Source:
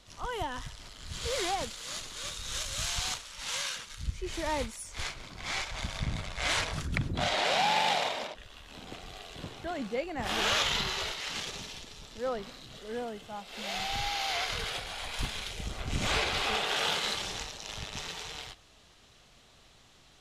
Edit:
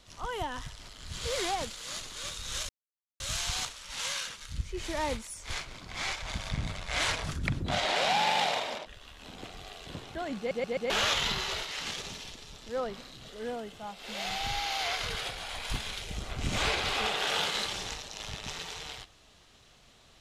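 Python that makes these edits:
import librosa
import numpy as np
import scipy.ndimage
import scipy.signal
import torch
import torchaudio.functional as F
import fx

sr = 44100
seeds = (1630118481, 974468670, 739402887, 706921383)

y = fx.edit(x, sr, fx.insert_silence(at_s=2.69, length_s=0.51),
    fx.stutter_over(start_s=9.87, slice_s=0.13, count=4), tone=tone)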